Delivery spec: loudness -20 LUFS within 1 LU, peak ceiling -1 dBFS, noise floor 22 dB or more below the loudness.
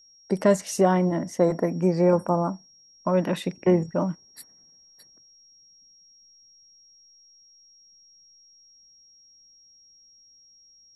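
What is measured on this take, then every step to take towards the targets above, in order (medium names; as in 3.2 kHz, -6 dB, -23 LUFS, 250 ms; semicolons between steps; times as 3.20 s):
steady tone 5.6 kHz; tone level -53 dBFS; loudness -24.0 LUFS; peak level -6.5 dBFS; loudness target -20.0 LUFS
-> band-stop 5.6 kHz, Q 30; trim +4 dB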